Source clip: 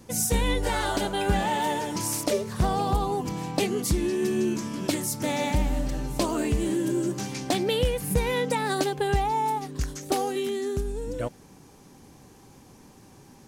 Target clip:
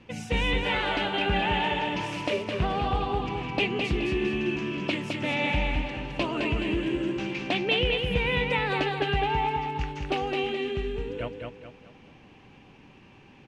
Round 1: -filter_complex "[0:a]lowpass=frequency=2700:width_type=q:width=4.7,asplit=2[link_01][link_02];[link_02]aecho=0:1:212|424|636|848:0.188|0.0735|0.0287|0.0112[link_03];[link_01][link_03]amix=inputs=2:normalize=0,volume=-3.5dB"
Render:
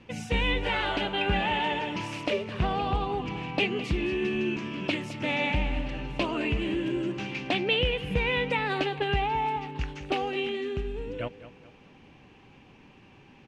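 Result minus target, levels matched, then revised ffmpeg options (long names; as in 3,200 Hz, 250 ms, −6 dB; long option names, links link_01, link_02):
echo-to-direct −10 dB
-filter_complex "[0:a]lowpass=frequency=2700:width_type=q:width=4.7,asplit=2[link_01][link_02];[link_02]aecho=0:1:212|424|636|848|1060:0.596|0.232|0.0906|0.0353|0.0138[link_03];[link_01][link_03]amix=inputs=2:normalize=0,volume=-3.5dB"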